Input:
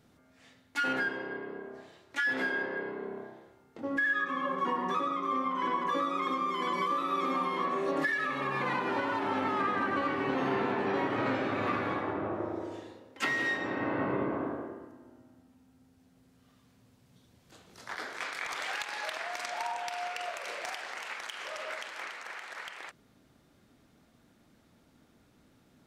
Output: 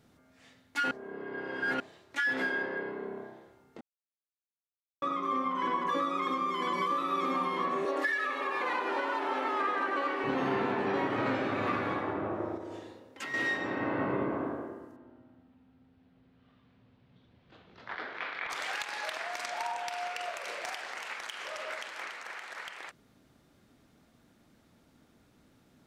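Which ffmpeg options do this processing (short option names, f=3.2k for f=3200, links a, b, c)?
-filter_complex "[0:a]asettb=1/sr,asplit=3[a][b][c];[a]atrim=end=7.854[d];[b]atrim=start=7.85:end=10.24,asetpts=PTS-STARTPTS,afade=t=in:d=0.004:c=qsin,afade=t=out:st=2.386:d=0.004:c=qsin,highpass=f=320:w=0.5412,highpass=f=320:w=1.3066[e];[c]atrim=start=10.236[f];[d][e]acrossfade=d=0.004:c1=hsin:c2=qsin[g];[g][f]acrossfade=d=0.004:c1=qsin:c2=hsin,asettb=1/sr,asplit=3[h][i][j];[h]atrim=end=12.564[k];[i]atrim=start=12.56:end=13.34,asetpts=PTS-STARTPTS,afade=t=in:d=0.004:c=qsin,afade=t=out:st=0.776:d=0.004:c=qsin,acompressor=threshold=-37dB:ratio=4:attack=3.2:release=140:knee=1:detection=peak[l];[j]atrim=start=13.336[m];[k][l]acrossfade=d=0.004:c1=hsin:c2=qsin[n];[n][m]acrossfade=d=0.004:c1=qsin:c2=hsin,asettb=1/sr,asplit=3[o][p][q];[o]atrim=end=14.964[r];[p]atrim=start=14.96:end=18.5,asetpts=PTS-STARTPTS,afade=t=in:d=0.004:c=qsin,afade=t=out:st=3.536:d=0.004:c=qsin,lowpass=f=3.6k:w=0.5412,lowpass=f=3.6k:w=1.3066[s];[q]atrim=start=18.496[t];[r][s]acrossfade=d=0.004:c1=hsin:c2=qsin[u];[u][t]acrossfade=d=0.004:c1=qsin:c2=hsin,asplit=5[v][w][x][y][z];[v]atrim=end=0.912[aa];[w]atrim=start=0.908:end=1.802,asetpts=PTS-STARTPTS,areverse[ab];[x]atrim=start=1.798:end=3.81,asetpts=PTS-STARTPTS,afade=t=out:st=2.008:d=0.004:c=hsin[ac];[y]atrim=start=3.81:end=5.02,asetpts=PTS-STARTPTS,volume=0[ad];[z]atrim=start=5.02,asetpts=PTS-STARTPTS,afade=t=in:d=0.004:c=hsin[ae];[aa][ab]acrossfade=d=0.004:c1=hsin:c2=hsin[af];[ac][ad][ae]concat=n=3:v=0:a=1[ag];[af][ag]acrossfade=d=0.004:c1=hsin:c2=hsin"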